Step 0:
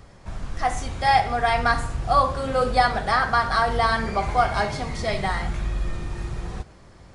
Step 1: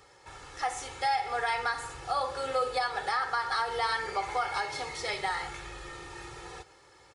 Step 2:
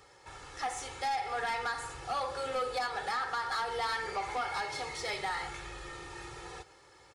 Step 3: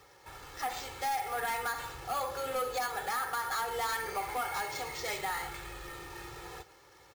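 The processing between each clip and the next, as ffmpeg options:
-af "highpass=f=760:p=1,aecho=1:1:2.3:0.8,alimiter=limit=0.158:level=0:latency=1:release=194,volume=0.668"
-af "asoftclip=type=tanh:threshold=0.0473,volume=0.891"
-af "acrusher=samples=4:mix=1:aa=0.000001"

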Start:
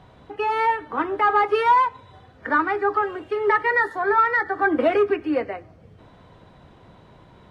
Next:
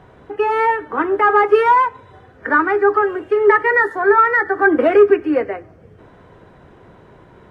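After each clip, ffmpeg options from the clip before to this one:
-af "equalizer=f=400:t=o:w=0.67:g=7,equalizer=f=1600:t=o:w=0.67:g=5,equalizer=f=4000:t=o:w=0.67:g=-7,volume=1.33"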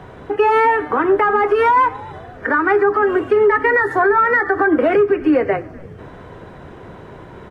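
-filter_complex "[0:a]acrossover=split=120[s0][s1];[s1]acompressor=threshold=0.178:ratio=6[s2];[s0][s2]amix=inputs=2:normalize=0,alimiter=limit=0.178:level=0:latency=1:release=102,asplit=4[s3][s4][s5][s6];[s4]adelay=251,afreqshift=-150,volume=0.0794[s7];[s5]adelay=502,afreqshift=-300,volume=0.0359[s8];[s6]adelay=753,afreqshift=-450,volume=0.016[s9];[s3][s7][s8][s9]amix=inputs=4:normalize=0,volume=2.51"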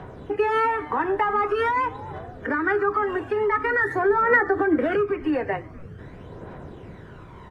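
-af "aphaser=in_gain=1:out_gain=1:delay=1.2:decay=0.51:speed=0.46:type=triangular,volume=0.447"

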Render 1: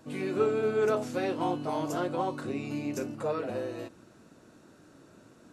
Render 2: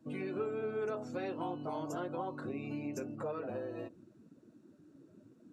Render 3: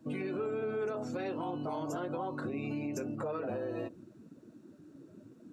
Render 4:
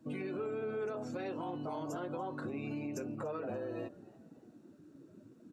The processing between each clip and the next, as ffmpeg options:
-af "afftdn=nr=17:nf=-47,acompressor=threshold=0.0112:ratio=2.5"
-af "alimiter=level_in=2.99:limit=0.0631:level=0:latency=1:release=49,volume=0.335,volume=1.88"
-filter_complex "[0:a]asplit=4[s0][s1][s2][s3];[s1]adelay=289,afreqshift=70,volume=0.0708[s4];[s2]adelay=578,afreqshift=140,volume=0.0313[s5];[s3]adelay=867,afreqshift=210,volume=0.0136[s6];[s0][s4][s5][s6]amix=inputs=4:normalize=0,volume=0.708"

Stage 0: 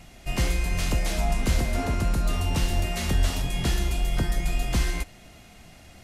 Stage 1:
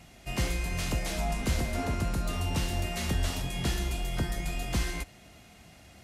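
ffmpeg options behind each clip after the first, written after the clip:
-af "highpass=50,volume=0.668"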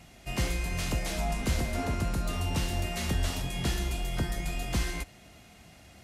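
-af anull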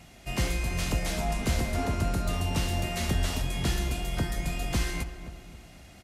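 -filter_complex "[0:a]asplit=2[s0][s1];[s1]adelay=262,lowpass=f=1300:p=1,volume=0.316,asplit=2[s2][s3];[s3]adelay=262,lowpass=f=1300:p=1,volume=0.5,asplit=2[s4][s5];[s5]adelay=262,lowpass=f=1300:p=1,volume=0.5,asplit=2[s6][s7];[s7]adelay=262,lowpass=f=1300:p=1,volume=0.5,asplit=2[s8][s9];[s9]adelay=262,lowpass=f=1300:p=1,volume=0.5[s10];[s0][s2][s4][s6][s8][s10]amix=inputs=6:normalize=0,volume=1.19"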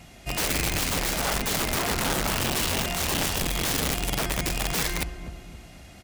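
-af "aeval=exprs='(mod(16.8*val(0)+1,2)-1)/16.8':c=same,volume=1.5"

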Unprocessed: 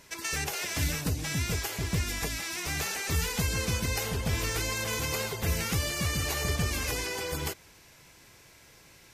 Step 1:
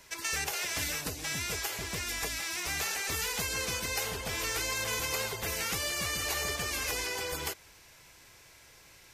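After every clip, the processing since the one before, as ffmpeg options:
-filter_complex "[0:a]equalizer=f=200:w=0.63:g=-6.5,acrossover=split=230|1200|4800[s0][s1][s2][s3];[s0]acompressor=threshold=0.00708:ratio=6[s4];[s4][s1][s2][s3]amix=inputs=4:normalize=0"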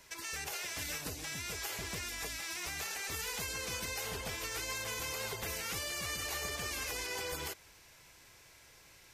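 -af "alimiter=level_in=1.12:limit=0.0631:level=0:latency=1:release=52,volume=0.891,volume=0.708"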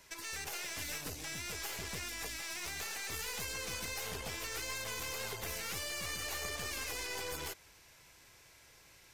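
-af "aeval=exprs='(tanh(50.1*val(0)+0.65)-tanh(0.65))/50.1':c=same,volume=1.26"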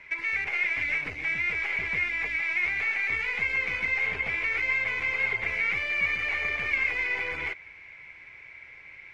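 -af "lowpass=f=2200:t=q:w=15,volume=1.41"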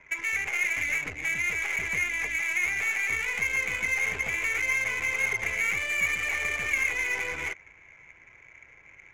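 -af "adynamicsmooth=sensitivity=7.5:basefreq=1200"

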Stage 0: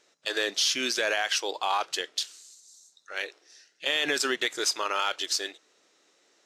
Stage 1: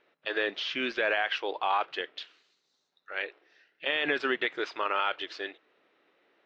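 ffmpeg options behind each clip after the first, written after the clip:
-af "lowpass=f=2900:w=0.5412,lowpass=f=2900:w=1.3066"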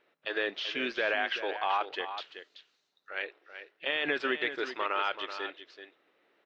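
-af "aecho=1:1:381:0.299,volume=0.794"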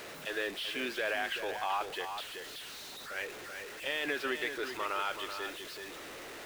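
-af "aeval=exprs='val(0)+0.5*0.0188*sgn(val(0))':c=same,volume=0.531"

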